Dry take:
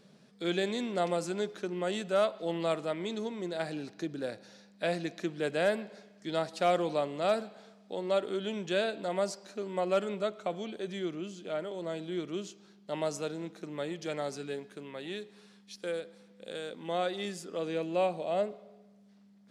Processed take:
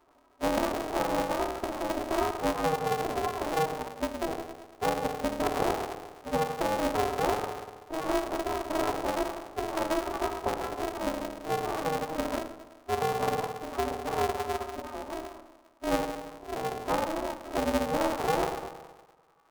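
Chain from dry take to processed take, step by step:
spike at every zero crossing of −24.5 dBFS
brick-wall band-pass 320–1,200 Hz
mains-hum notches 60/120/180/240/300/360/420/480/540/600 Hz
noise reduction from a noise print of the clip's start 15 dB
downward compressor 8 to 1, threshold −34 dBFS, peak gain reduction 11.5 dB
phase-vocoder pitch shift with formants kept +4.5 semitones
on a send at −2 dB: convolution reverb RT60 1.3 s, pre-delay 3 ms
on the sum: ring modulator with a square carrier 160 Hz
level +8.5 dB

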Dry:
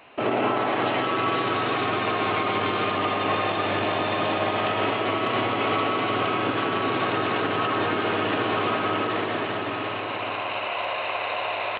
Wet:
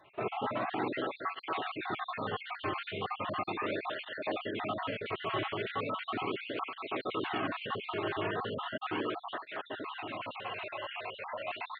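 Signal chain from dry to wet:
time-frequency cells dropped at random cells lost 51%
through-zero flanger with one copy inverted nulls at 0.37 Hz, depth 4.3 ms
level −5.5 dB

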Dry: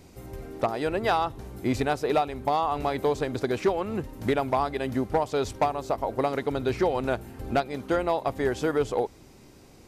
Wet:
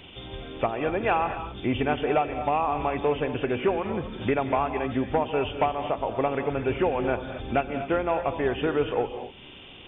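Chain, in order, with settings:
hearing-aid frequency compression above 2,300 Hz 4 to 1
reverb whose tail is shaped and stops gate 270 ms rising, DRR 8.5 dB
one half of a high-frequency compander encoder only

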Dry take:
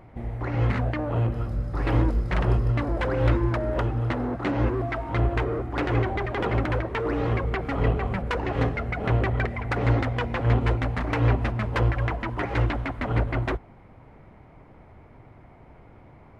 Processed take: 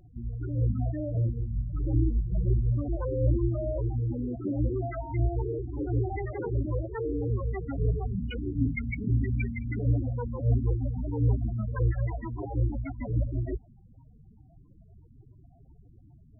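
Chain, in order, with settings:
0:08.17–0:09.79: drawn EQ curve 110 Hz 0 dB, 260 Hz +6 dB, 730 Hz −13 dB, 2,600 Hz +6 dB
spectral peaks only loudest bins 8
level −2.5 dB

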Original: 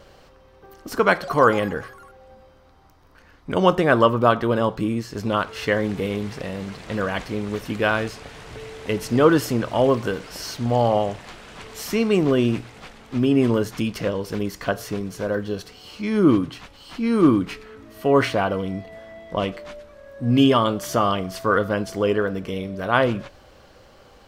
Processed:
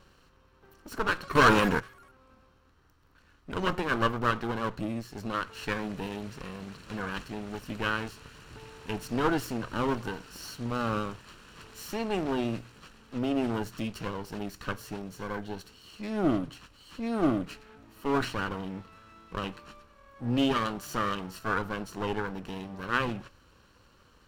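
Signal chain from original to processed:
lower of the sound and its delayed copy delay 0.7 ms
0:01.35–0:01.80: leveller curve on the samples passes 3
level −8.5 dB

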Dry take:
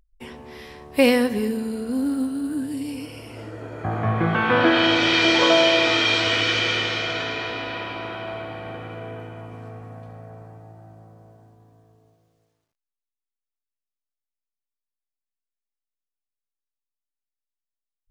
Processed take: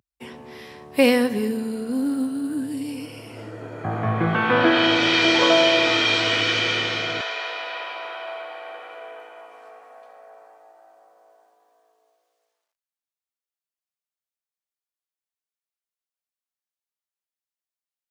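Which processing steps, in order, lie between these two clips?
high-pass filter 98 Hz 24 dB per octave, from 0:07.21 530 Hz

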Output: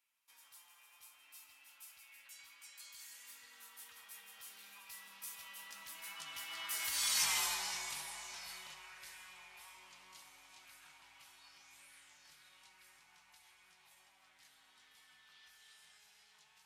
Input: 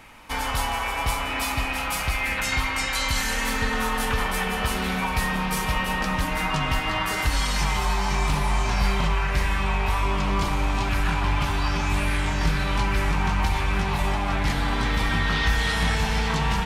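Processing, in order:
source passing by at 0:07.33, 18 m/s, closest 4.5 metres
first difference
level +2.5 dB

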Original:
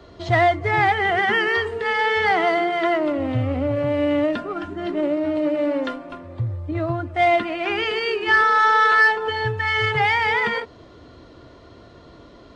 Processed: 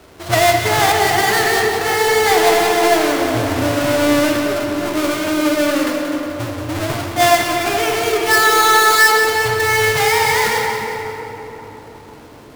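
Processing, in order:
each half-wave held at its own peak
low-shelf EQ 200 Hz −8.5 dB
rectangular room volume 220 cubic metres, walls hard, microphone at 0.37 metres
pitch vibrato 8.1 Hz 7.8 cents
on a send: echo with a time of its own for lows and highs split 990 Hz, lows 343 ms, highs 180 ms, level −8 dB
on the sum: level −1 dB

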